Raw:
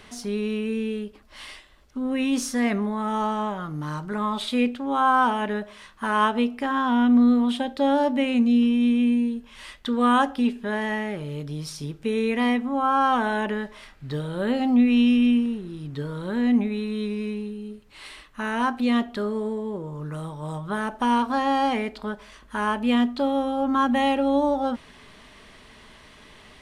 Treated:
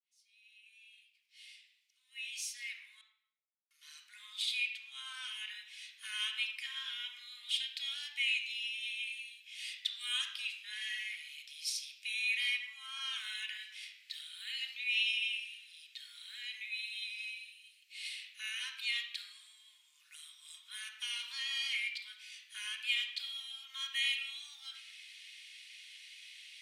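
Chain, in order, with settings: fade-in on the opening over 6.68 s; elliptic high-pass 2.3 kHz, stop band 80 dB; 3.01–3.71 s: word length cut 6-bit, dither none; reverberation RT60 0.95 s, pre-delay 3 ms, DRR 0.5 dB

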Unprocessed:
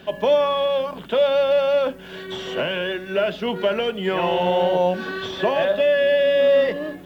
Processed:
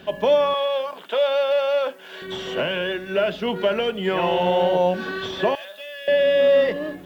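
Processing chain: 0.54–2.22 s: high-pass 510 Hz 12 dB/octave; 5.55–6.08 s: differentiator

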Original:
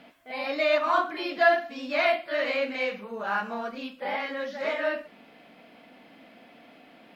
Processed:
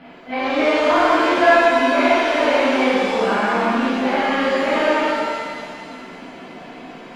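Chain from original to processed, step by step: formants flattened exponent 0.6; peaking EQ 3.6 kHz -4.5 dB 0.21 oct; in parallel at -2.5 dB: compressor with a negative ratio -34 dBFS; on the sum: distance through air 390 m; pitch-shifted reverb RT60 2 s, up +7 st, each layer -8 dB, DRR -8 dB; trim +1 dB

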